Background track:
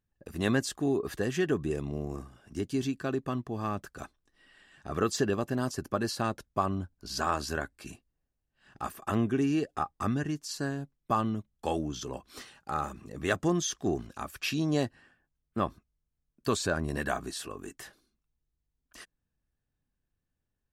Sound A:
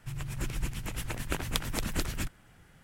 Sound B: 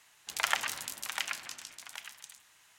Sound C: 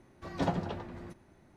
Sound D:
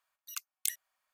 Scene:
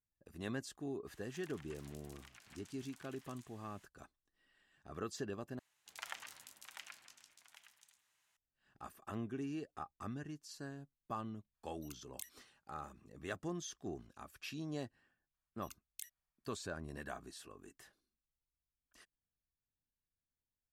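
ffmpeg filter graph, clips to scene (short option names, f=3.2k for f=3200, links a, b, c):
-filter_complex "[2:a]asplit=2[a][b];[4:a]asplit=2[c][d];[0:a]volume=-14.5dB[e];[a]acompressor=threshold=-45dB:ratio=10:attack=2.5:release=131:knee=1:detection=rms[f];[e]asplit=2[g][h];[g]atrim=end=5.594[i];[b]atrim=end=2.78,asetpts=PTS-STARTPTS,volume=-17dB[j];[h]atrim=start=8.366[k];[f]atrim=end=2.78,asetpts=PTS-STARTPTS,volume=-7dB,afade=t=in:d=0.004:c=hsin,afade=t=out:st=2.776:d=0.004:c=hsin,adelay=1070[l];[c]atrim=end=1.13,asetpts=PTS-STARTPTS,volume=-15.5dB,afade=t=in:d=0.004:c=hsin,afade=t=out:st=1.126:d=0.004:c=hsin,adelay=508914S[m];[d]atrim=end=1.13,asetpts=PTS-STARTPTS,volume=-16dB,afade=t=in:d=0.004:c=hsin,afade=t=out:st=1.126:d=0.004:c=hsin,adelay=15340[n];[i][j]acrossfade=d=0.004:c1=hsin:c2=hsin[o];[o][k]acrossfade=d=0.004:c1=hsin:c2=hsin[p];[p][l][m][n]amix=inputs=4:normalize=0"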